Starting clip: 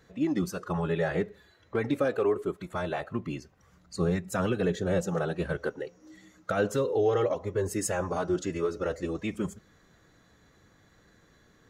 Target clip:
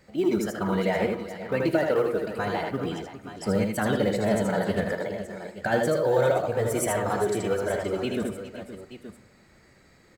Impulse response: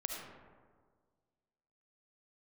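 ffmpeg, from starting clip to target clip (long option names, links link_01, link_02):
-filter_complex "[0:a]acrusher=bits=9:mode=log:mix=0:aa=0.000001,asetrate=50715,aresample=44100,aecho=1:1:79|405|520|876:0.631|0.2|0.2|0.224,asplit=2[link_01][link_02];[1:a]atrim=start_sample=2205,asetrate=79380,aresample=44100[link_03];[link_02][link_03]afir=irnorm=-1:irlink=0,volume=-5dB[link_04];[link_01][link_04]amix=inputs=2:normalize=0"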